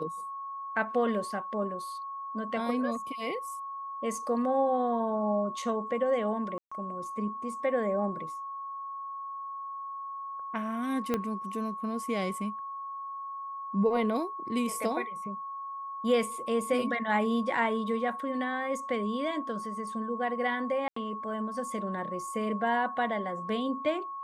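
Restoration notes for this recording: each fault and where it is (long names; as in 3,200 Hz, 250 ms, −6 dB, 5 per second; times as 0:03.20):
whistle 1,100 Hz −36 dBFS
0:06.58–0:06.71: drop-out 135 ms
0:11.14: click −15 dBFS
0:20.88–0:20.96: drop-out 84 ms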